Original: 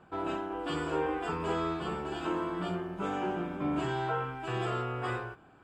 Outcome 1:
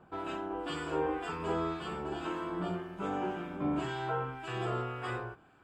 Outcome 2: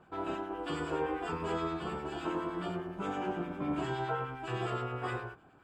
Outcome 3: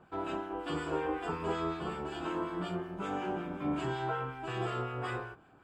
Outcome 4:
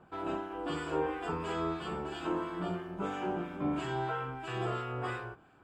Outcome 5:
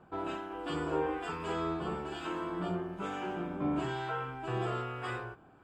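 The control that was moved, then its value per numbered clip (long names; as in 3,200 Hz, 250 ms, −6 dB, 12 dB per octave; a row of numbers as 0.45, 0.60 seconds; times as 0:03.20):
two-band tremolo in antiphase, speed: 1.9, 9.7, 5.4, 3, 1.1 Hertz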